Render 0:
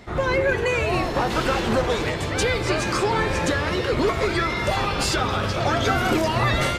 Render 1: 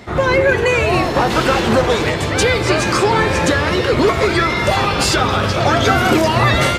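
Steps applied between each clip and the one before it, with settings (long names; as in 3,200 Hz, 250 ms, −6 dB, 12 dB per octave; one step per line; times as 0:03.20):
high-pass filter 58 Hz
level +7.5 dB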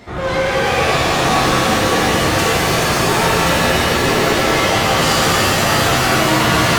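soft clipping −17 dBFS, distortion −9 dB
reverb with rising layers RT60 3.1 s, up +7 semitones, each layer −2 dB, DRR −5.5 dB
level −3.5 dB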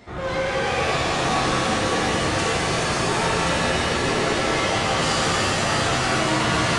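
downsampling to 22,050 Hz
level −7 dB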